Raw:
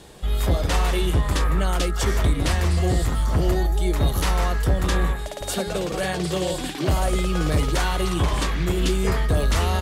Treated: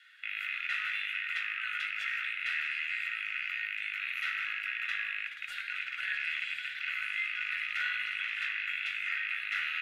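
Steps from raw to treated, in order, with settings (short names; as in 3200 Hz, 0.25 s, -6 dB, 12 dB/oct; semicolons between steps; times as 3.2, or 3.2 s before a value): rattling part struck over -28 dBFS, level -16 dBFS; steep high-pass 1500 Hz 72 dB/oct; bell 4800 Hz -13 dB 1.2 oct; in parallel at +3 dB: limiter -28 dBFS, peak gain reduction 10 dB; on the sum: added harmonics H 2 -42 dB, 7 -35 dB, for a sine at -14 dBFS; air absorption 320 m; reverb RT60 0.95 s, pre-delay 4 ms, DRR 4.5 dB; gain -3.5 dB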